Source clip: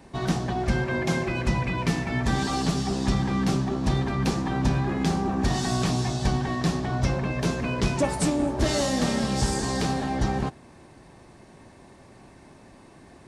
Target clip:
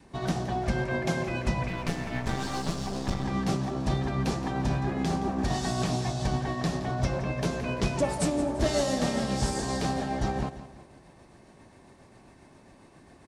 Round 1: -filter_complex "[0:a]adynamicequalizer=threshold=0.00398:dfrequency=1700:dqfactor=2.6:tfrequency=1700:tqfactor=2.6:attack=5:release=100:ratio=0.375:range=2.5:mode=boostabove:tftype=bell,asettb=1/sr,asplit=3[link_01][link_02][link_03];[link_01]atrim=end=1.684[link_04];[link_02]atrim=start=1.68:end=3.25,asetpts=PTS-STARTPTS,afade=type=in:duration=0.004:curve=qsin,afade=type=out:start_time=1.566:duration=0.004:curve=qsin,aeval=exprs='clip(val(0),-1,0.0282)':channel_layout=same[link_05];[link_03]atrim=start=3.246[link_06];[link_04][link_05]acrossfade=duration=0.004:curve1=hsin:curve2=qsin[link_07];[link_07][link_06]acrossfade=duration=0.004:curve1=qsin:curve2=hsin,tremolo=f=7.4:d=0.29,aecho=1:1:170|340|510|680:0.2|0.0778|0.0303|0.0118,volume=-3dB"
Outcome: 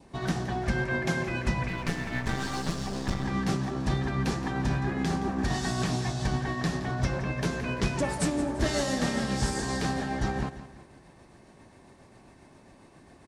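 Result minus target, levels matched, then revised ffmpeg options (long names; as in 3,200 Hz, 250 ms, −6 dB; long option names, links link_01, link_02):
2,000 Hz band +3.5 dB
-filter_complex "[0:a]adynamicequalizer=threshold=0.00398:dfrequency=630:dqfactor=2.6:tfrequency=630:tqfactor=2.6:attack=5:release=100:ratio=0.375:range=2.5:mode=boostabove:tftype=bell,asettb=1/sr,asplit=3[link_01][link_02][link_03];[link_01]atrim=end=1.684[link_04];[link_02]atrim=start=1.68:end=3.25,asetpts=PTS-STARTPTS,afade=type=in:duration=0.004:curve=qsin,afade=type=out:start_time=1.566:duration=0.004:curve=qsin,aeval=exprs='clip(val(0),-1,0.0282)':channel_layout=same[link_05];[link_03]atrim=start=3.246[link_06];[link_04][link_05]acrossfade=duration=0.004:curve1=hsin:curve2=qsin[link_07];[link_07][link_06]acrossfade=duration=0.004:curve1=qsin:curve2=hsin,tremolo=f=7.4:d=0.29,aecho=1:1:170|340|510|680:0.2|0.0778|0.0303|0.0118,volume=-3dB"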